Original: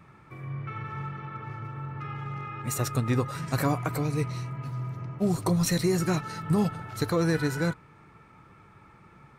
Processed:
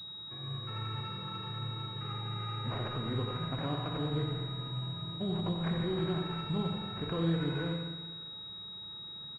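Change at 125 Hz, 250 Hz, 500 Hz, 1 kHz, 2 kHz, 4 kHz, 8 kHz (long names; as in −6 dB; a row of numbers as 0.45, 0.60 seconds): −6.0 dB, −7.0 dB, −7.5 dB, −6.5 dB, −9.5 dB, +4.5 dB, below −30 dB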